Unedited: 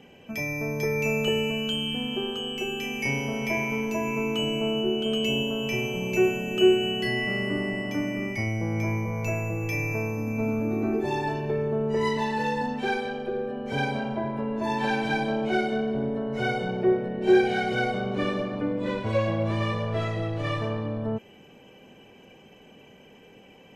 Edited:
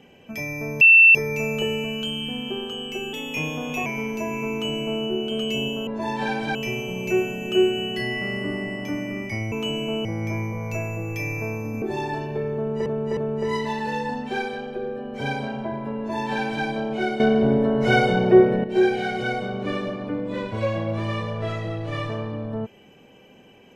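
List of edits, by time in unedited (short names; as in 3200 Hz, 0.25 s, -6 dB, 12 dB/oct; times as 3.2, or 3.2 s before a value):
0.81 add tone 2680 Hz -8 dBFS 0.34 s
2.79–3.6 speed 111%
4.25–4.78 copy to 8.58
10.35–10.96 cut
11.69–12 loop, 3 plays
14.49–15.17 copy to 5.61
15.72–17.16 gain +9 dB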